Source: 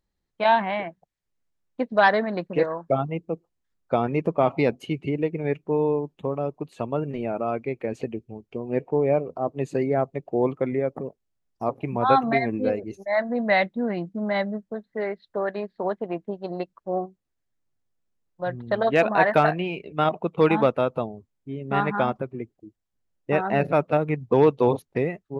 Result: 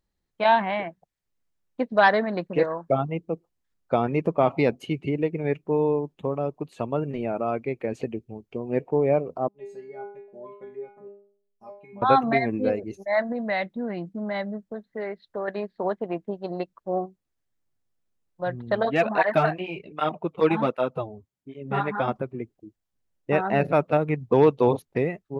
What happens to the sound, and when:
0:09.48–0:12.02: stiff-string resonator 200 Hz, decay 0.54 s, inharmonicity 0.002
0:13.32–0:15.48: downward compressor 1.5 to 1, threshold −33 dBFS
0:18.85–0:22.08: through-zero flanger with one copy inverted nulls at 1.3 Hz, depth 6.4 ms

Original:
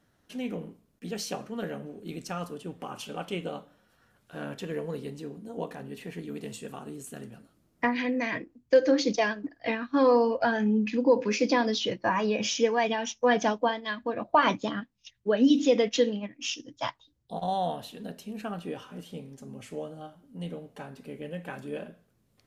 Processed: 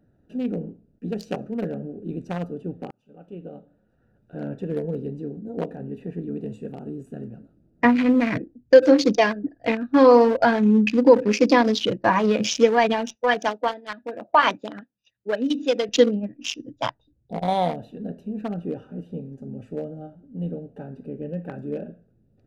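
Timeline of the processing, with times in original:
0:02.91–0:04.48: fade in
0:07.85–0:08.38: bass and treble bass +8 dB, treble −6 dB
0:10.62–0:11.08: high-shelf EQ 3,100 Hz → 2,100 Hz +10.5 dB
0:13.15–0:15.89: high-pass filter 930 Hz 6 dB per octave
whole clip: adaptive Wiener filter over 41 samples; level +8.5 dB

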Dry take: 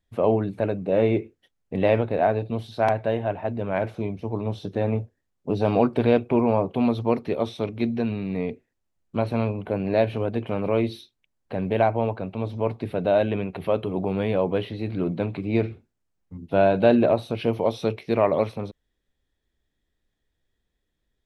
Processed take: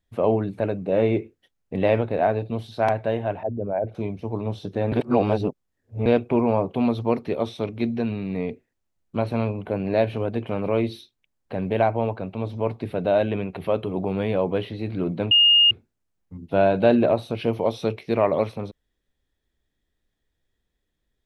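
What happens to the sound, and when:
0:03.43–0:03.95: spectral envelope exaggerated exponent 2
0:04.92–0:06.06: reverse
0:15.31–0:15.71: beep over 2,840 Hz −12 dBFS

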